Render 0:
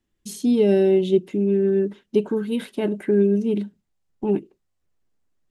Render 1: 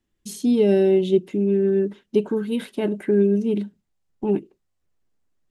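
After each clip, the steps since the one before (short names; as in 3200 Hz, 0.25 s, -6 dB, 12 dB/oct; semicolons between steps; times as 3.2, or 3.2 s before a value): nothing audible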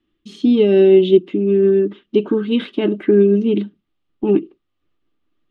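synth low-pass 3200 Hz, resonance Q 2.8; small resonant body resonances 310/1200 Hz, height 13 dB, ringing for 35 ms; noise-modulated level, depth 55%; gain +3 dB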